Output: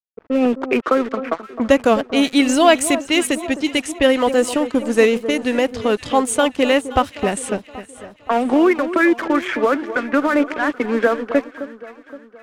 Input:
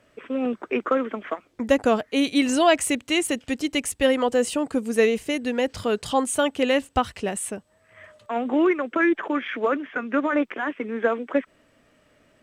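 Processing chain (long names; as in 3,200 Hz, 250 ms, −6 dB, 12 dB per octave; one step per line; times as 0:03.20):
camcorder AGC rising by 9.9 dB per second
dead-zone distortion −38.5 dBFS
low-pass that shuts in the quiet parts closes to 730 Hz, open at −20.5 dBFS
delay that swaps between a low-pass and a high-pass 260 ms, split 1,300 Hz, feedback 65%, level −12 dB
level +6 dB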